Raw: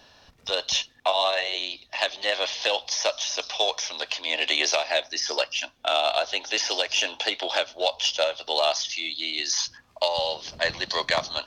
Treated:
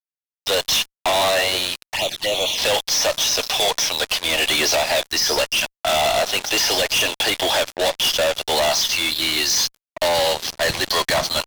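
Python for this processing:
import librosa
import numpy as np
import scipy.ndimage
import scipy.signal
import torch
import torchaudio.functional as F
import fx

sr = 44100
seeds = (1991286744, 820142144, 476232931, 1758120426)

y = fx.fuzz(x, sr, gain_db=35.0, gate_db=-39.0)
y = fx.env_flanger(y, sr, rest_ms=4.5, full_db=-14.0, at=(1.87, 2.58))
y = y * librosa.db_to_amplitude(-3.0)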